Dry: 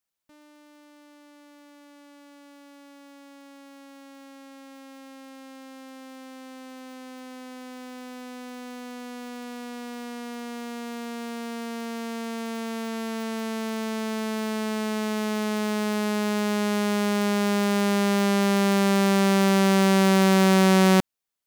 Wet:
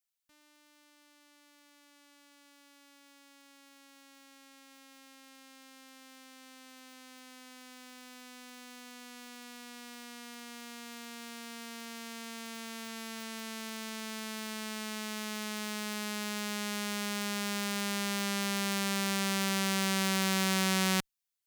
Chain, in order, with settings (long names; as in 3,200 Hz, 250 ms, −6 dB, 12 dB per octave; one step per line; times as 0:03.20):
guitar amp tone stack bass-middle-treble 5-5-5
level +4 dB